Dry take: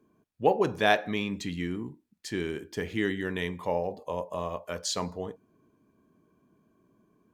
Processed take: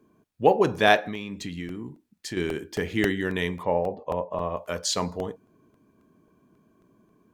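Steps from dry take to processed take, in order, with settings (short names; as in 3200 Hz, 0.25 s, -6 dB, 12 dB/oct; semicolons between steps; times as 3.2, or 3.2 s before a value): 0.99–2.37 compressor 4:1, threshold -36 dBFS, peak gain reduction 9.5 dB; 3.63–4.57 LPF 2200 Hz 12 dB/oct; crackling interface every 0.27 s, samples 64, repeat, from 0.88; gain +4.5 dB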